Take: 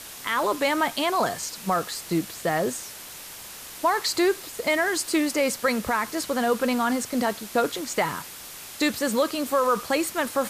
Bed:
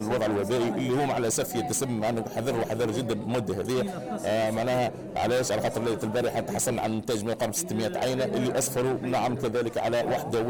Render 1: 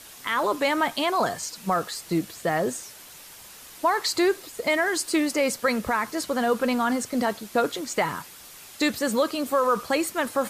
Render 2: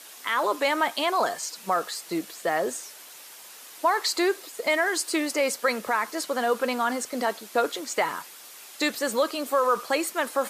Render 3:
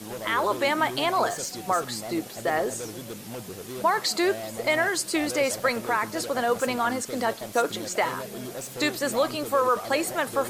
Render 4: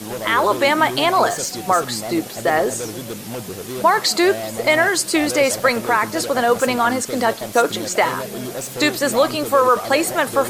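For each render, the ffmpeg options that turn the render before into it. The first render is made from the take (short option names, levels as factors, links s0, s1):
-af "afftdn=nr=6:nf=-41"
-af "highpass=350"
-filter_complex "[1:a]volume=0.316[s0];[0:a][s0]amix=inputs=2:normalize=0"
-af "volume=2.51"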